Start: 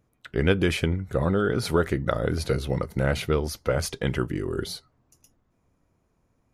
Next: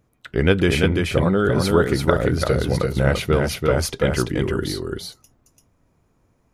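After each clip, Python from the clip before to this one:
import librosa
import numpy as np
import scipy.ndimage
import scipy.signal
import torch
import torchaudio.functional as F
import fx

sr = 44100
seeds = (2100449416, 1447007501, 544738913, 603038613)

y = x + 10.0 ** (-3.5 / 20.0) * np.pad(x, (int(339 * sr / 1000.0), 0))[:len(x)]
y = F.gain(torch.from_numpy(y), 4.5).numpy()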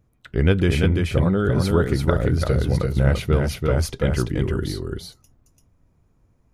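y = fx.low_shelf(x, sr, hz=160.0, db=11.0)
y = F.gain(torch.from_numpy(y), -5.0).numpy()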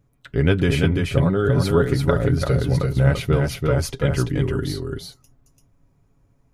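y = x + 0.49 * np.pad(x, (int(7.2 * sr / 1000.0), 0))[:len(x)]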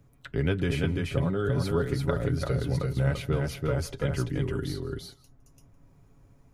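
y = x + 10.0 ** (-23.0 / 20.0) * np.pad(x, (int(160 * sr / 1000.0), 0))[:len(x)]
y = fx.band_squash(y, sr, depth_pct=40)
y = F.gain(torch.from_numpy(y), -8.5).numpy()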